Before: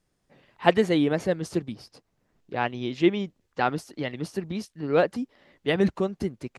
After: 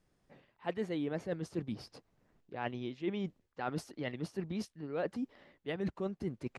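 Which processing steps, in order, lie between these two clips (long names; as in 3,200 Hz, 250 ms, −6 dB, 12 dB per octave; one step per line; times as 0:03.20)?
high-shelf EQ 4,200 Hz −7 dB
reversed playback
downward compressor 5 to 1, threshold −35 dBFS, peak gain reduction 19.5 dB
reversed playback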